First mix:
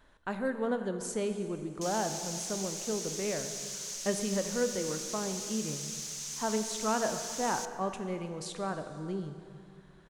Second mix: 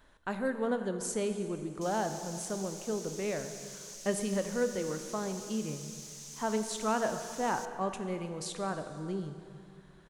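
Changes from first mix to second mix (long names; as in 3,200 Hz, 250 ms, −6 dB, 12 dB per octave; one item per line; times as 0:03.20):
background −9.5 dB
master: add high-shelf EQ 7,100 Hz +4.5 dB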